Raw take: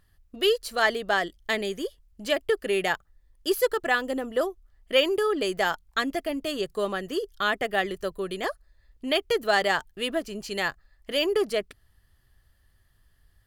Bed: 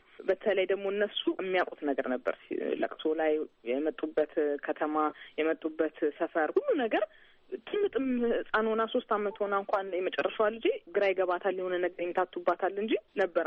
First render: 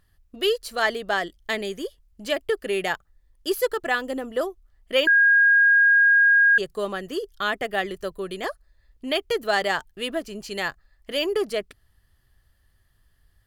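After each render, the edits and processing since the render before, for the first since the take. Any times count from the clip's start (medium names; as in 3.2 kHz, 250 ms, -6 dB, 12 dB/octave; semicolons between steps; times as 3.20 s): 5.07–6.58 s: bleep 1.63 kHz -13 dBFS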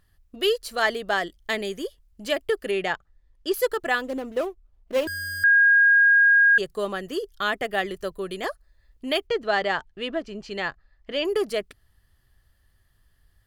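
2.71–3.54 s: distance through air 80 m; 4.04–5.44 s: median filter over 25 samples; 9.27–11.25 s: distance through air 130 m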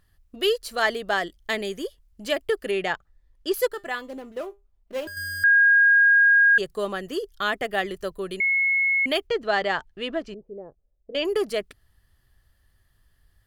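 3.68–5.17 s: feedback comb 200 Hz, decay 0.22 s; 8.40–9.06 s: bleep 2.18 kHz -18.5 dBFS; 10.34–11.15 s: four-pole ladder low-pass 570 Hz, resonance 55%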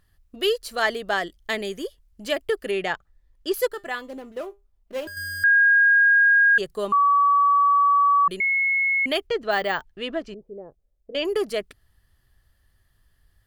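6.92–8.28 s: bleep 1.14 kHz -14.5 dBFS; 9.51–9.92 s: careless resampling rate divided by 2×, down none, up hold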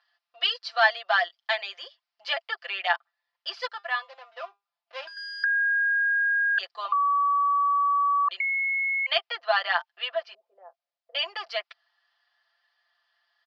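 Chebyshev band-pass 680–5100 Hz, order 4; comb 5.8 ms, depth 91%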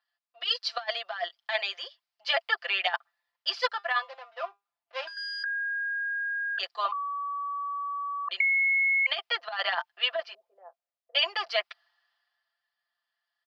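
compressor with a negative ratio -27 dBFS, ratio -0.5; three bands expanded up and down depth 40%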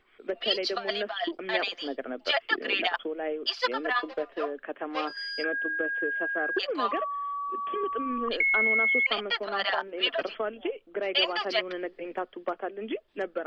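add bed -4 dB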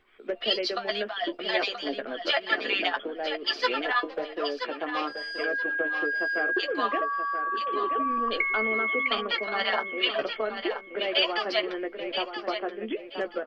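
doubling 14 ms -8 dB; thinning echo 978 ms, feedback 24%, high-pass 150 Hz, level -8 dB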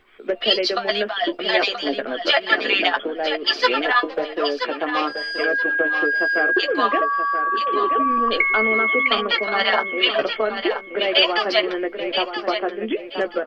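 trim +8 dB; peak limiter -3 dBFS, peak gain reduction 1 dB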